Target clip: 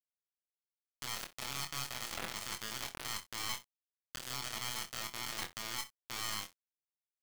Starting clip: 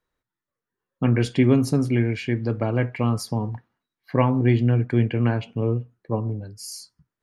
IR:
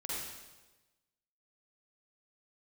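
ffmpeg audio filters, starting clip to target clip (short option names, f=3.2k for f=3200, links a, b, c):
-filter_complex "[0:a]afftfilt=real='real(if(lt(b,920),b+92*(1-2*mod(floor(b/92),2)),b),0)':imag='imag(if(lt(b,920),b+92*(1-2*mod(floor(b/92),2)),b),0)':win_size=2048:overlap=0.75,lowpass=1.1k,equalizer=f=110:w=4.4:g=-6,bandreject=f=60:t=h:w=6,bandreject=f=120:t=h:w=6,bandreject=f=180:t=h:w=6,bandreject=f=240:t=h:w=6,bandreject=f=300:t=h:w=6,bandreject=f=360:t=h:w=6,bandreject=f=420:t=h:w=6,areverse,acompressor=threshold=-38dB:ratio=12,areverse,alimiter=level_in=14dB:limit=-24dB:level=0:latency=1:release=20,volume=-14dB,acompressor=mode=upward:threshold=-49dB:ratio=2.5,aeval=exprs='val(0)*sin(2*PI*990*n/s)':c=same,acrusher=bits=4:dc=4:mix=0:aa=0.000001,asplit=2[a][b];[b]adelay=23,volume=-6.5dB[c];[a][c]amix=inputs=2:normalize=0,asplit=2[d][e];[e]aecho=0:1:29|64:0.299|0.133[f];[d][f]amix=inputs=2:normalize=0,volume=10dB"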